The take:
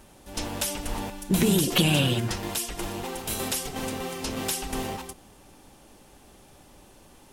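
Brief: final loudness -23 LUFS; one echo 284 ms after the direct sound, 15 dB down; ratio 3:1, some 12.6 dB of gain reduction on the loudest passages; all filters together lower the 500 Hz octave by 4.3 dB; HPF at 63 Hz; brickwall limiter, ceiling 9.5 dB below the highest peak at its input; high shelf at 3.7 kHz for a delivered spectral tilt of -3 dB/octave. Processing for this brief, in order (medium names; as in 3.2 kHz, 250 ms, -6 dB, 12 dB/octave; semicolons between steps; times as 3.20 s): high-pass 63 Hz; peaking EQ 500 Hz -6 dB; treble shelf 3.7 kHz +6.5 dB; compression 3:1, threshold -35 dBFS; peak limiter -27.5 dBFS; delay 284 ms -15 dB; trim +14.5 dB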